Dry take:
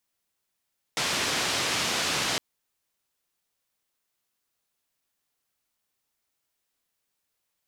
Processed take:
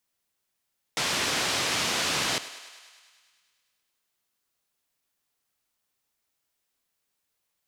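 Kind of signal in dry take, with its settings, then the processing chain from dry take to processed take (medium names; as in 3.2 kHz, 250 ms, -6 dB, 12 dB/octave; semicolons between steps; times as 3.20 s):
noise band 95–5300 Hz, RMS -27.5 dBFS 1.41 s
thinning echo 102 ms, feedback 71%, high-pass 380 Hz, level -15 dB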